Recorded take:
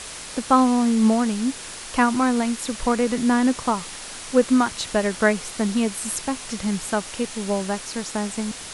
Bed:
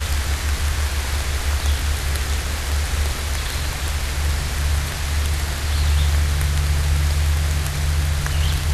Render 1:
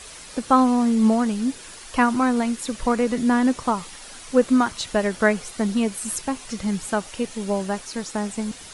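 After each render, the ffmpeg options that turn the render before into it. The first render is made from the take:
-af "afftdn=nr=8:nf=-37"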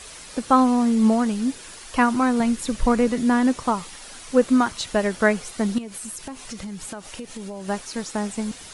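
-filter_complex "[0:a]asettb=1/sr,asplit=3[a][b][c];[a]atrim=end=2.404[d];[b]atrim=start=2.4:end=3.09,asetpts=PTS-STARTPTS,afade=t=in:d=0.004:c=qsin,afade=t=out:st=0.686:d=0.004:c=qsin,lowshelf=f=150:g=10.5[e];[c]atrim=start=3.086[f];[d][e]acrossfade=d=0.004:c1=hsin:c2=qsin[g];[g][f]acrossfade=d=0.004:c1=qsin:c2=hsin,asettb=1/sr,asplit=3[h][i][j];[h]atrim=end=5.784[k];[i]atrim=start=5.78:end=7.68,asetpts=PTS-STARTPTS,afade=t=in:d=0.004:c=qsin,afade=t=out:st=1.896:d=0.004:c=qsin,acompressor=threshold=-30dB:ratio=10:attack=3.2:release=140:knee=1:detection=peak[l];[j]atrim=start=7.676[m];[k][l]acrossfade=d=0.004:c1=hsin:c2=qsin[n];[n][m]acrossfade=d=0.004:c1=qsin:c2=hsin"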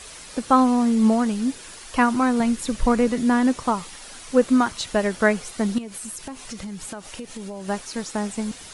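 -af anull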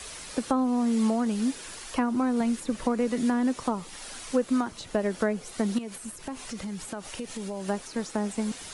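-filter_complex "[0:a]acrossover=split=170|640[a][b][c];[a]acompressor=threshold=-46dB:ratio=4[d];[b]acompressor=threshold=-24dB:ratio=4[e];[c]acompressor=threshold=-35dB:ratio=4[f];[d][e][f]amix=inputs=3:normalize=0,acrossover=split=2300[g][h];[h]alimiter=level_in=7dB:limit=-24dB:level=0:latency=1:release=370,volume=-7dB[i];[g][i]amix=inputs=2:normalize=0"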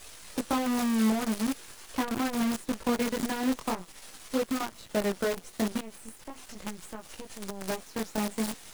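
-af "flanger=delay=18:depth=5.1:speed=0.43,acrusher=bits=6:dc=4:mix=0:aa=0.000001"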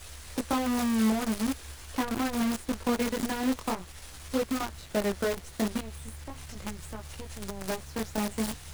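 -filter_complex "[1:a]volume=-26.5dB[a];[0:a][a]amix=inputs=2:normalize=0"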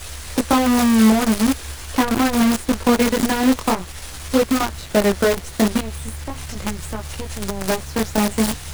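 -af "volume=12dB"

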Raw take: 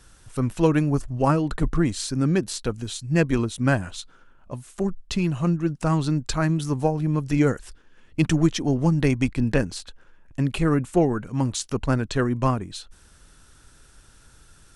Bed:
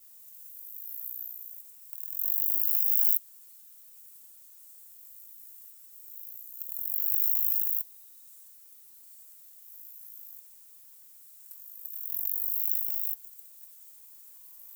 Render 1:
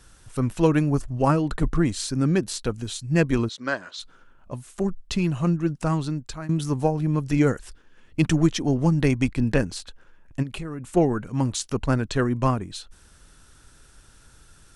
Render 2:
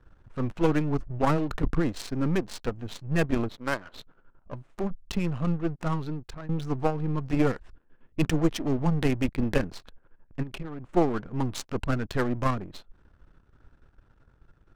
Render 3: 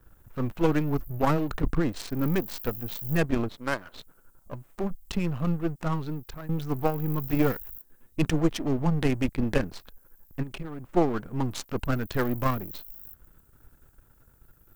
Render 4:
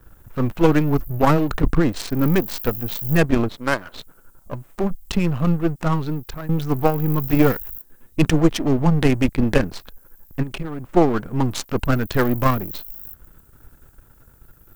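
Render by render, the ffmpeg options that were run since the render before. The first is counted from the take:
-filter_complex "[0:a]asplit=3[a][b][c];[a]afade=t=out:st=3.48:d=0.02[d];[b]highpass=470,equalizer=f=780:t=q:w=4:g=-9,equalizer=f=2.6k:t=q:w=4:g=-7,equalizer=f=4.2k:t=q:w=4:g=5,lowpass=f=6.1k:w=0.5412,lowpass=f=6.1k:w=1.3066,afade=t=in:st=3.48:d=0.02,afade=t=out:st=3.99:d=0.02[e];[c]afade=t=in:st=3.99:d=0.02[f];[d][e][f]amix=inputs=3:normalize=0,asplit=3[g][h][i];[g]afade=t=out:st=10.42:d=0.02[j];[h]acompressor=threshold=-30dB:ratio=5:attack=3.2:release=140:knee=1:detection=peak,afade=t=in:st=10.42:d=0.02,afade=t=out:st=10.95:d=0.02[k];[i]afade=t=in:st=10.95:d=0.02[l];[j][k][l]amix=inputs=3:normalize=0,asplit=2[m][n];[m]atrim=end=6.49,asetpts=PTS-STARTPTS,afade=t=out:st=5.74:d=0.75:silence=0.16788[o];[n]atrim=start=6.49,asetpts=PTS-STARTPTS,afade=t=in:d=0.004:c=hsin:silence=0.16788[p];[o][p]concat=n=2:v=0:a=1"
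-af "aeval=exprs='if(lt(val(0),0),0.251*val(0),val(0))':c=same,adynamicsmooth=sensitivity=8:basefreq=1.3k"
-filter_complex "[1:a]volume=-14.5dB[a];[0:a][a]amix=inputs=2:normalize=0"
-af "volume=8dB,alimiter=limit=-2dB:level=0:latency=1"

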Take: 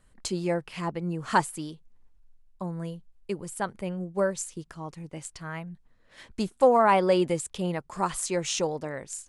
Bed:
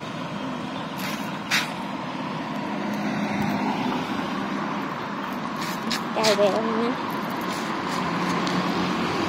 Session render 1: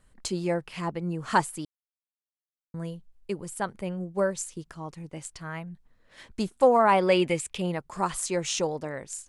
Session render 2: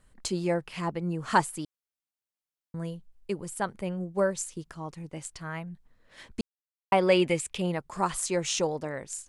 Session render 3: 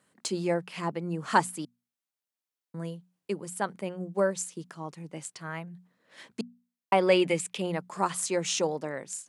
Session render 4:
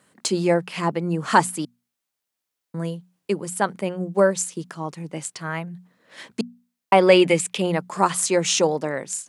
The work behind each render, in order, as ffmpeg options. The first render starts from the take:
-filter_complex "[0:a]asettb=1/sr,asplit=3[a][b][c];[a]atrim=end=7.014[d];[b]atrim=start=7.01:end=7.62,asetpts=PTS-STARTPTS,afade=t=in:d=0.004:c=qsin,afade=t=out:st=0.606:d=0.004:c=qsin,equalizer=f=2.4k:t=o:w=0.69:g=10.5[e];[c]atrim=start=7.616[f];[d][e]acrossfade=d=0.004:c1=hsin:c2=qsin[g];[g][f]acrossfade=d=0.004:c1=qsin:c2=hsin,asplit=3[h][i][j];[h]atrim=end=1.65,asetpts=PTS-STARTPTS,afade=t=out:st=1.646:d=0.004:c=hsin[k];[i]atrim=start=1.65:end=2.74,asetpts=PTS-STARTPTS,volume=0[l];[j]atrim=start=2.74,asetpts=PTS-STARTPTS,afade=t=in:d=0.004:c=hsin[m];[k][l][m]concat=n=3:v=0:a=1"
-filter_complex "[0:a]asplit=3[a][b][c];[a]atrim=end=6.41,asetpts=PTS-STARTPTS,afade=t=out:st=6.406:d=0.004:c=hsin[d];[b]atrim=start=6.41:end=6.92,asetpts=PTS-STARTPTS,volume=0[e];[c]atrim=start=6.92,asetpts=PTS-STARTPTS,afade=t=in:d=0.004:c=hsin[f];[d][e][f]concat=n=3:v=0:a=1"
-af "highpass=f=150:w=0.5412,highpass=f=150:w=1.3066,bandreject=f=60:t=h:w=6,bandreject=f=120:t=h:w=6,bandreject=f=180:t=h:w=6,bandreject=f=240:t=h:w=6"
-af "volume=8.5dB,alimiter=limit=-2dB:level=0:latency=1"

